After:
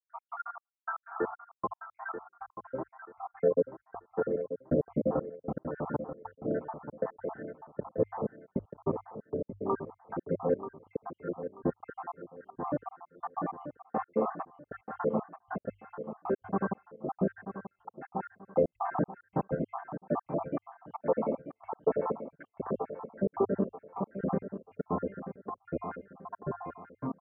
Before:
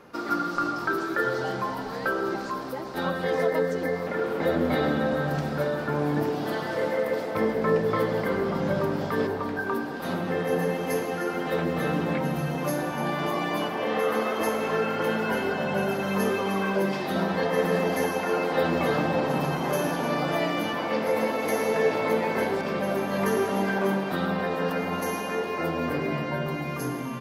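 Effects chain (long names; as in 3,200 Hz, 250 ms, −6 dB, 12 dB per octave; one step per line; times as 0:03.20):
time-frequency cells dropped at random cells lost 69%
inverse Chebyshev low-pass filter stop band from 4,000 Hz, stop band 60 dB
mains-hum notches 50/100 Hz
gate pattern ".x.xxx.." 156 BPM −60 dB
on a send: repeating echo 935 ms, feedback 29%, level −10.5 dB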